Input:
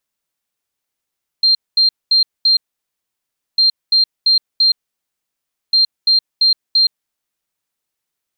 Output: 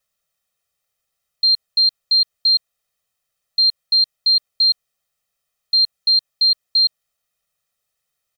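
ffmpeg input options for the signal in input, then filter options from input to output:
-f lavfi -i "aevalsrc='0.376*sin(2*PI*4180*t)*clip(min(mod(mod(t,2.15),0.34),0.12-mod(mod(t,2.15),0.34))/0.005,0,1)*lt(mod(t,2.15),1.36)':d=6.45:s=44100"
-af "aecho=1:1:1.6:0.91"

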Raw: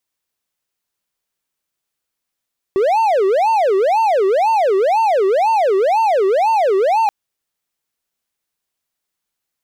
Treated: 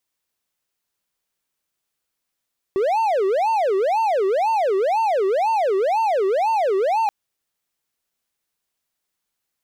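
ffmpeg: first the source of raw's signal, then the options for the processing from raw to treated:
-f lavfi -i "aevalsrc='0.335*(1-4*abs(mod((642.5*t-263.5/(2*PI*2)*sin(2*PI*2*t))+0.25,1)-0.5))':d=4.33:s=44100"
-af "alimiter=limit=-14.5dB:level=0:latency=1:release=19"

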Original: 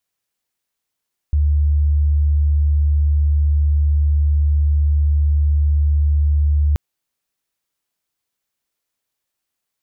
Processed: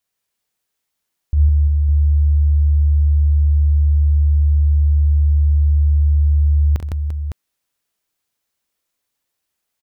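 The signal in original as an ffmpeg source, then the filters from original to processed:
-f lavfi -i "aevalsrc='0.251*sin(2*PI*73.7*t)':d=5.43:s=44100"
-af "aecho=1:1:41|67|128|158|344|558:0.355|0.335|0.112|0.668|0.299|0.422"

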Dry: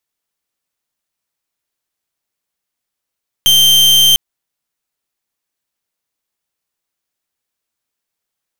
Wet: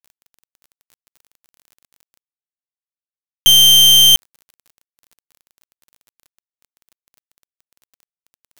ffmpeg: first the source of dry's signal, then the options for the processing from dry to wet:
-f lavfi -i "aevalsrc='0.376*(2*lt(mod(3140*t,1),0.4)-1)':d=0.7:s=44100"
-af "areverse,acompressor=mode=upward:threshold=-20dB:ratio=2.5,areverse,acrusher=bits=5:mix=0:aa=0.000001"

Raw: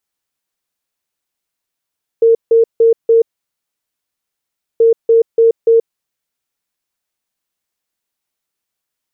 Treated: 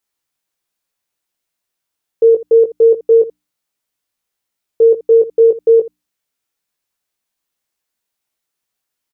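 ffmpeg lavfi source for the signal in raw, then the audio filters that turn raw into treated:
-f lavfi -i "aevalsrc='0.531*sin(2*PI*457*t)*clip(min(mod(mod(t,2.58),0.29),0.13-mod(mod(t,2.58),0.29))/0.005,0,1)*lt(mod(t,2.58),1.16)':d=5.16:s=44100"
-af "bandreject=f=60:t=h:w=6,bandreject=f=120:t=h:w=6,bandreject=f=180:t=h:w=6,bandreject=f=240:t=h:w=6,bandreject=f=300:t=h:w=6,aecho=1:1:18|80:0.562|0.141"

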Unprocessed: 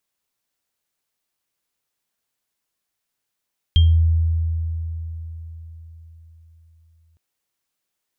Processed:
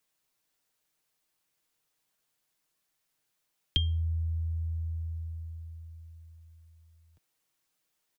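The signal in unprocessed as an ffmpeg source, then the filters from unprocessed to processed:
-f lavfi -i "aevalsrc='0.355*pow(10,-3*t/4.38)*sin(2*PI*81.9*t)+0.126*pow(10,-3*t/0.28)*sin(2*PI*3200*t)':d=3.41:s=44100"
-filter_complex "[0:a]aecho=1:1:6.4:0.41,acrossover=split=140|640|680[a][b][c][d];[a]acompressor=threshold=-32dB:ratio=6[e];[e][b][c][d]amix=inputs=4:normalize=0"

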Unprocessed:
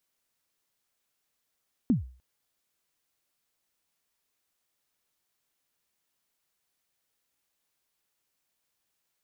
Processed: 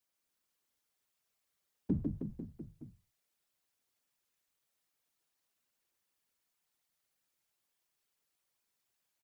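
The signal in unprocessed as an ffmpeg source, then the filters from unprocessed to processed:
-f lavfi -i "aevalsrc='0.15*pow(10,-3*t/0.41)*sin(2*PI*(280*0.137/log(63/280)*(exp(log(63/280)*min(t,0.137)/0.137)-1)+63*max(t-0.137,0)))':d=0.3:s=44100"
-filter_complex "[0:a]asplit=2[a][b];[b]aecho=0:1:150|315|496.5|696.2|915.8:0.631|0.398|0.251|0.158|0.1[c];[a][c]amix=inputs=2:normalize=0,afftfilt=real='hypot(re,im)*cos(2*PI*random(0))':imag='hypot(re,im)*sin(2*PI*random(1))':win_size=512:overlap=0.75"

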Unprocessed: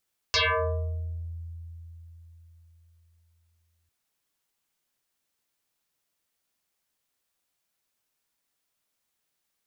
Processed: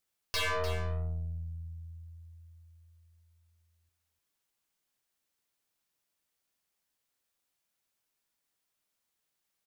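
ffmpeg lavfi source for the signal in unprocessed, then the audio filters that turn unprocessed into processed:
-f lavfi -i "aevalsrc='0.106*pow(10,-3*t/4.12)*sin(2*PI*83.5*t+11*pow(10,-3*t/0.98)*sin(2*PI*6.54*83.5*t))':d=3.55:s=44100"
-af "aeval=exprs='(tanh(31.6*val(0)+0.65)-tanh(0.65))/31.6':c=same,aecho=1:1:299:0.282"

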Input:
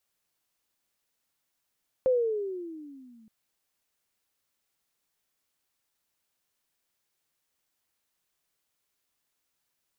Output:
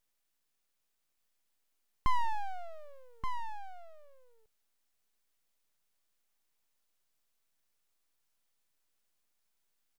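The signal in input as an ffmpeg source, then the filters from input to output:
-f lavfi -i "aevalsrc='pow(10,(-19-34*t/1.22)/20)*sin(2*PI*526*1.22/(-15.5*log(2)/12)*(exp(-15.5*log(2)/12*t/1.22)-1))':d=1.22:s=44100"
-filter_complex "[0:a]highpass=220,aeval=exprs='abs(val(0))':c=same,asplit=2[a][b];[b]aecho=0:1:1177:0.447[c];[a][c]amix=inputs=2:normalize=0"

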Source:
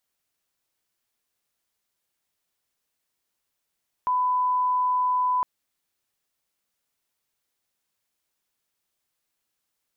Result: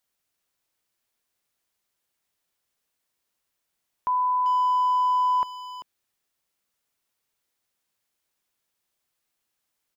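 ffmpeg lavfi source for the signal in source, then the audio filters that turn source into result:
-f lavfi -i "sine=f=1000:d=1.36:r=44100,volume=-1.94dB"
-filter_complex "[0:a]asplit=2[a][b];[b]adelay=390,highpass=300,lowpass=3.4k,asoftclip=type=hard:threshold=-30dB,volume=-7dB[c];[a][c]amix=inputs=2:normalize=0"

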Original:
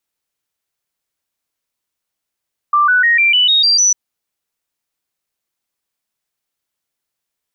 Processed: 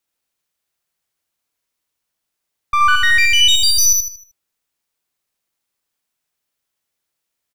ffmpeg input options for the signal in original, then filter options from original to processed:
-f lavfi -i "aevalsrc='0.376*clip(min(mod(t,0.15),0.15-mod(t,0.15))/0.005,0,1)*sin(2*PI*1180*pow(2,floor(t/0.15)/3)*mod(t,0.15))':d=1.2:s=44100"
-af "aeval=exprs='clip(val(0),-1,0.1)':c=same,aecho=1:1:77|154|231|308|385:0.631|0.233|0.0864|0.032|0.0118"

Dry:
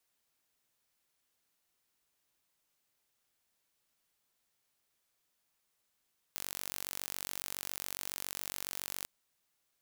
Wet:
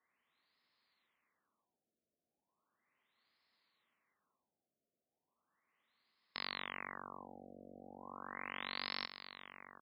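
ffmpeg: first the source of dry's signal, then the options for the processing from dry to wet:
-f lavfi -i "aevalsrc='0.251*eq(mod(n,934),0)':d=2.69:s=44100"
-filter_complex "[0:a]highpass=100,equalizer=f=120:t=q:w=4:g=-7,equalizer=f=230:t=q:w=4:g=5,equalizer=f=1.1k:t=q:w=4:g=9,equalizer=f=2k:t=q:w=4:g=9,equalizer=f=4.2k:t=q:w=4:g=9,lowpass=f=9.7k:w=0.5412,lowpass=f=9.7k:w=1.3066,asplit=2[a][b];[b]aecho=0:1:851:0.316[c];[a][c]amix=inputs=2:normalize=0,afftfilt=real='re*lt(b*sr/1024,710*pow(5400/710,0.5+0.5*sin(2*PI*0.36*pts/sr)))':imag='im*lt(b*sr/1024,710*pow(5400/710,0.5+0.5*sin(2*PI*0.36*pts/sr)))':win_size=1024:overlap=0.75"

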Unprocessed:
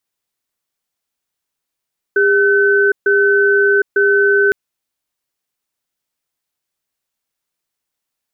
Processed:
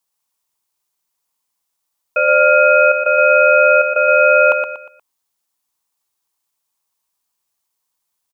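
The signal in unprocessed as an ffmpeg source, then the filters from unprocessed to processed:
-f lavfi -i "aevalsrc='0.251*(sin(2*PI*403*t)+sin(2*PI*1520*t))*clip(min(mod(t,0.9),0.76-mod(t,0.9))/0.005,0,1)':d=2.36:s=44100"
-filter_complex "[0:a]bass=f=250:g=12,treble=f=4k:g=8,aeval=exprs='val(0)*sin(2*PI*1000*n/s)':c=same,asplit=2[a][b];[b]aecho=0:1:119|238|357|476:0.473|0.166|0.058|0.0203[c];[a][c]amix=inputs=2:normalize=0"

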